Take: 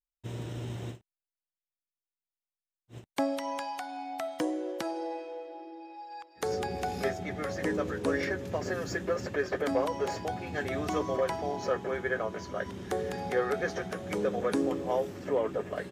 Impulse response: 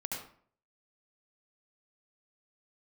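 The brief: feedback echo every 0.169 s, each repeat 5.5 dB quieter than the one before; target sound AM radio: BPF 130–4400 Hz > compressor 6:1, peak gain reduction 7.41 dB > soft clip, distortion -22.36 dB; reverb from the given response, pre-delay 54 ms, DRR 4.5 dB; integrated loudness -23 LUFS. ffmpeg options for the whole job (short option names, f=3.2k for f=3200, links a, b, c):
-filter_complex "[0:a]aecho=1:1:169|338|507|676|845|1014|1183:0.531|0.281|0.149|0.079|0.0419|0.0222|0.0118,asplit=2[a][b];[1:a]atrim=start_sample=2205,adelay=54[c];[b][c]afir=irnorm=-1:irlink=0,volume=-6.5dB[d];[a][d]amix=inputs=2:normalize=0,highpass=130,lowpass=4.4k,acompressor=threshold=-28dB:ratio=6,asoftclip=threshold=-23dB,volume=11.5dB"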